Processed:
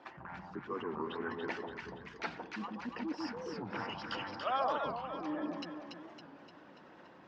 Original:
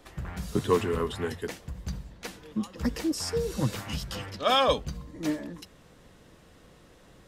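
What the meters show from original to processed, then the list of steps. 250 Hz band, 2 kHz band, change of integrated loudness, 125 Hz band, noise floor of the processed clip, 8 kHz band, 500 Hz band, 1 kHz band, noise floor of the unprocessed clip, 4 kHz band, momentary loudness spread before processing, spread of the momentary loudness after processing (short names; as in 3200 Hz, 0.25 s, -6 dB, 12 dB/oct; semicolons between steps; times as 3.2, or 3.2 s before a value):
-9.0 dB, -4.0 dB, -10.0 dB, -17.5 dB, -57 dBFS, under -20 dB, -11.0 dB, -5.5 dB, -56 dBFS, -14.0 dB, 15 LU, 19 LU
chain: formant sharpening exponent 1.5; treble ducked by the level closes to 1800 Hz, closed at -24.5 dBFS; reverse; compressor 6:1, threshold -34 dBFS, peak gain reduction 15.5 dB; reverse; speaker cabinet 320–5100 Hz, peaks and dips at 460 Hz -9 dB, 910 Hz +8 dB, 1500 Hz +6 dB, 2500 Hz +3 dB, 3700 Hz -5 dB; on a send: echo with dull and thin repeats by turns 0.143 s, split 980 Hz, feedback 73%, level -2 dB; on the sum: record warp 45 rpm, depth 160 cents; gain +1.5 dB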